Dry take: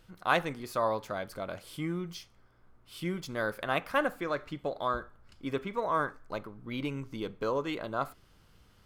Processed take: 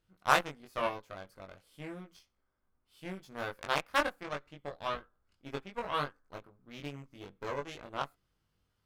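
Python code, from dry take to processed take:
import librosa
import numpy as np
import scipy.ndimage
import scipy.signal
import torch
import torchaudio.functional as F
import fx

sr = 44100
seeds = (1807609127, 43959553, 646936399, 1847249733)

y = fx.cheby_harmonics(x, sr, harmonics=(7, 8), levels_db=(-18, -29), full_scale_db=-10.5)
y = fx.doubler(y, sr, ms=21.0, db=-2.5)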